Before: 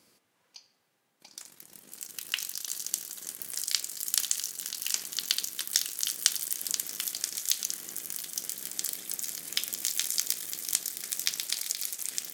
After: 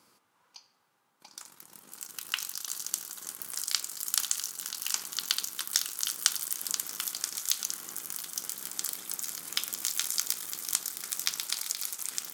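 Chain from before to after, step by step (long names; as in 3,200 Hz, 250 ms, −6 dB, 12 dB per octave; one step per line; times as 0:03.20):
high-pass filter 57 Hz
flat-topped bell 1,100 Hz +8 dB 1 octave
level −1 dB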